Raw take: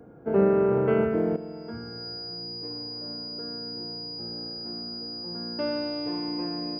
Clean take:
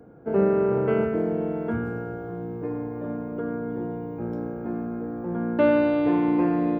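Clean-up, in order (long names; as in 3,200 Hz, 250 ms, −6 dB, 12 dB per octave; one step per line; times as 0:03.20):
notch filter 4,900 Hz, Q 30
level 0 dB, from 0:01.36 +10.5 dB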